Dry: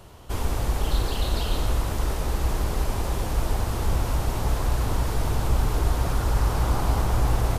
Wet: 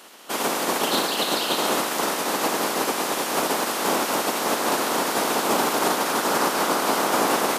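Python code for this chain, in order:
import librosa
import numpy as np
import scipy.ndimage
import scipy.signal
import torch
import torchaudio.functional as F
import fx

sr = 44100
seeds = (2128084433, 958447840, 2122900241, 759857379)

y = fx.spec_clip(x, sr, under_db=24)
y = scipy.signal.sosfilt(scipy.signal.butter(4, 220.0, 'highpass', fs=sr, output='sos'), y)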